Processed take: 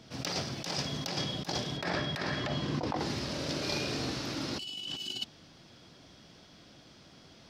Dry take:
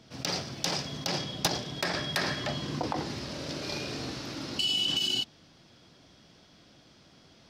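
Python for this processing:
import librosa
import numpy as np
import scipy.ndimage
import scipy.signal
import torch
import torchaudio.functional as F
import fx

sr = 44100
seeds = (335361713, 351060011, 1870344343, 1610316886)

y = fx.lowpass(x, sr, hz=fx.line((1.76, 2300.0), (2.98, 4000.0)), slope=6, at=(1.76, 2.98), fade=0.02)
y = fx.over_compress(y, sr, threshold_db=-33.0, ratio=-0.5)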